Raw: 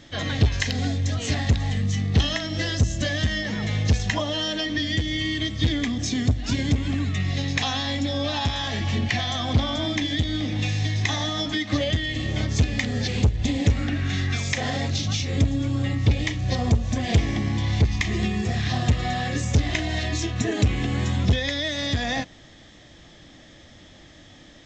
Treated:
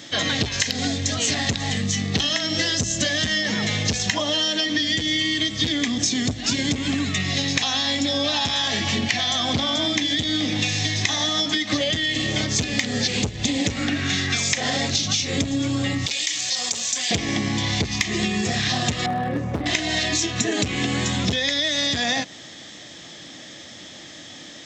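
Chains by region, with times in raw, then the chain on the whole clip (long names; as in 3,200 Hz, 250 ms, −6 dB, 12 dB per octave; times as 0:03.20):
0:16.06–0:17.11: first difference + envelope flattener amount 70%
0:19.06–0:19.66: low-pass filter 1,000 Hz + hard clipping −21 dBFS
whole clip: high-pass filter 160 Hz 12 dB per octave; high-shelf EQ 3,300 Hz +10.5 dB; downward compressor, threshold −25 dBFS; level +6 dB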